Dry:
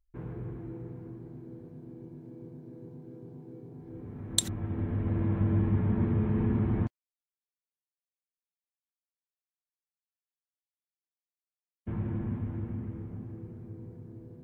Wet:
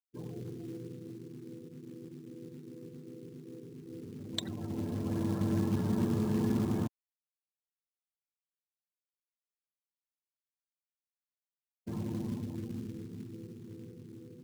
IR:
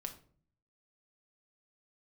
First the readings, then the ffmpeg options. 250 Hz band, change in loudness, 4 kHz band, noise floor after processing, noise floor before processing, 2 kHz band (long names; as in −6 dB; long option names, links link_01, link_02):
−1.0 dB, −4.0 dB, −5.5 dB, below −85 dBFS, below −85 dBFS, −2.0 dB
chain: -af "highpass=150,lowpass=2800,afftfilt=real='re*gte(hypot(re,im),0.00708)':imag='im*gte(hypot(re,im),0.00708)':win_size=1024:overlap=0.75,acrusher=bits=5:mode=log:mix=0:aa=0.000001"